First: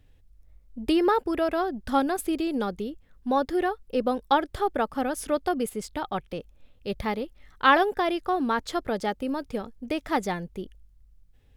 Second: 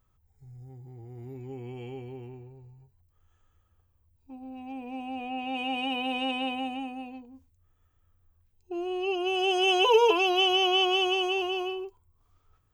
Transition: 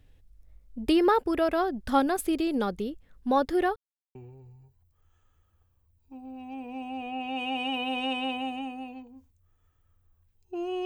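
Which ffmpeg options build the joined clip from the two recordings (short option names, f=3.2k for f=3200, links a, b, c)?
-filter_complex "[0:a]apad=whole_dur=10.85,atrim=end=10.85,asplit=2[a][b];[a]atrim=end=3.76,asetpts=PTS-STARTPTS,afade=t=out:st=3.756:d=0.004:c=hsin[c];[b]atrim=start=3.76:end=4.15,asetpts=PTS-STARTPTS,volume=0[d];[1:a]atrim=start=2.33:end=9.03,asetpts=PTS-STARTPTS,afade=t=in:d=0.004:c=hsin[e];[c][d][e]concat=n=3:v=0:a=1"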